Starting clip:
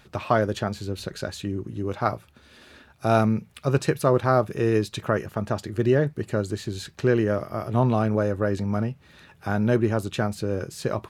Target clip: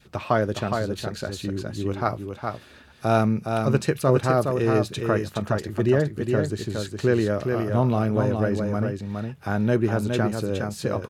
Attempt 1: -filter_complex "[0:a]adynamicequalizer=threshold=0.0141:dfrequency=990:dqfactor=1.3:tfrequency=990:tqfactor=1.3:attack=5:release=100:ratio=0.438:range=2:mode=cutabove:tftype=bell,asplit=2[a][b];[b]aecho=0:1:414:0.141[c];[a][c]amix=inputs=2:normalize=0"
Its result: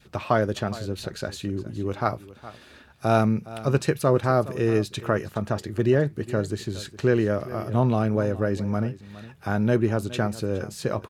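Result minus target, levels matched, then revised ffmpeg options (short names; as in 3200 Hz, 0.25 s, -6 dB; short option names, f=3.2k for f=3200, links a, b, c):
echo-to-direct -12 dB
-filter_complex "[0:a]adynamicequalizer=threshold=0.0141:dfrequency=990:dqfactor=1.3:tfrequency=990:tqfactor=1.3:attack=5:release=100:ratio=0.438:range=2:mode=cutabove:tftype=bell,asplit=2[a][b];[b]aecho=0:1:414:0.562[c];[a][c]amix=inputs=2:normalize=0"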